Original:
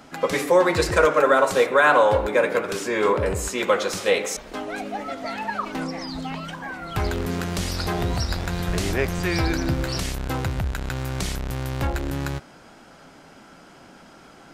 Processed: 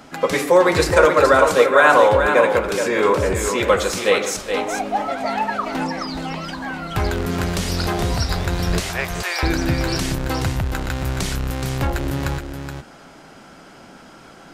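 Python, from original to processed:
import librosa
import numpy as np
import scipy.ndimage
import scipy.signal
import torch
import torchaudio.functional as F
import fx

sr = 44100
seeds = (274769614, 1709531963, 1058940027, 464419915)

y = fx.peak_eq(x, sr, hz=850.0, db=7.5, octaves=0.79, at=(4.57, 5.45))
y = fx.highpass(y, sr, hz=590.0, slope=24, at=(8.8, 9.43))
y = y + 10.0 ** (-7.0 / 20.0) * np.pad(y, (int(423 * sr / 1000.0), 0))[:len(y)]
y = y * librosa.db_to_amplitude(3.5)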